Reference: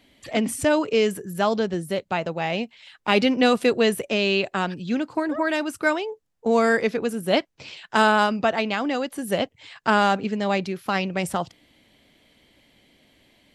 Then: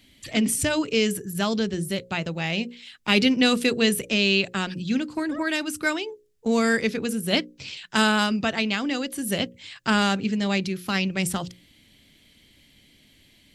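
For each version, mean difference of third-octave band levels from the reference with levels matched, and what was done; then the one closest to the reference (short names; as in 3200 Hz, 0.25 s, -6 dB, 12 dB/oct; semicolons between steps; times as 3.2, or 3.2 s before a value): 4.5 dB: bell 750 Hz -14.5 dB 2.4 oct; notches 60/120/180/240/300/360/420/480/540 Hz; gain +6.5 dB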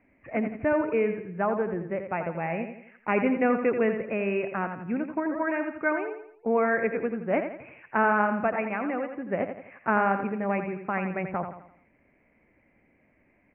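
8.5 dB: steep low-pass 2500 Hz 96 dB/oct; feedback echo 85 ms, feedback 42%, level -8 dB; gain -5 dB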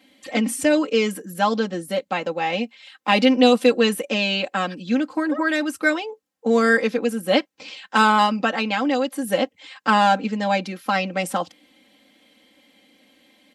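2.5 dB: HPF 180 Hz 12 dB/oct; comb 3.8 ms, depth 86%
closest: third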